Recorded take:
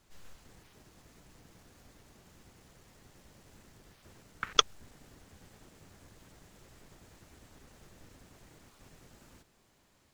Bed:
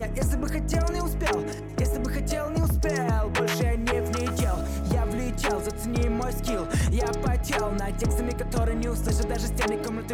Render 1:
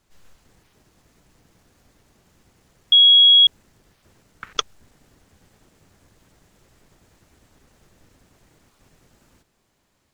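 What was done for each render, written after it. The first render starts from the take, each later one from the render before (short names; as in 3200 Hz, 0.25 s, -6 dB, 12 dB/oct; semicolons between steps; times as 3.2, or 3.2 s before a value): 2.92–3.47 bleep 3320 Hz -8 dBFS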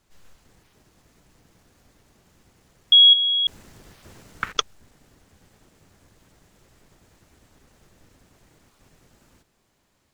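3.13–4.52 negative-ratio compressor -21 dBFS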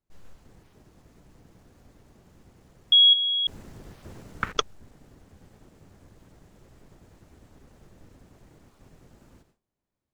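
gate with hold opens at -56 dBFS; tilt shelf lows +5 dB, about 1100 Hz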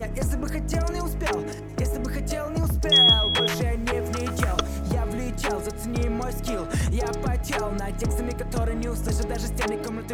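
add bed -0.5 dB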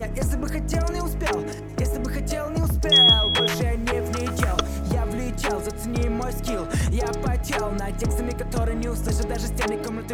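gain +1.5 dB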